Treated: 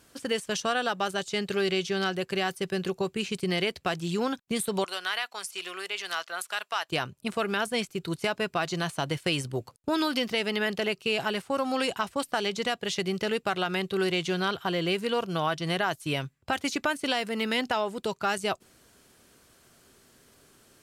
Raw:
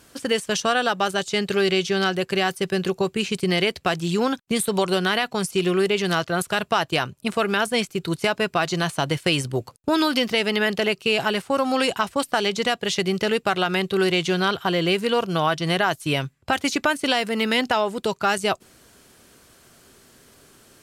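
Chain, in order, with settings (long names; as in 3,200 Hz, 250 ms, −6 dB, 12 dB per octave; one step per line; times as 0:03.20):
0:04.84–0:06.89: high-pass filter 940 Hz 12 dB per octave
level −6.5 dB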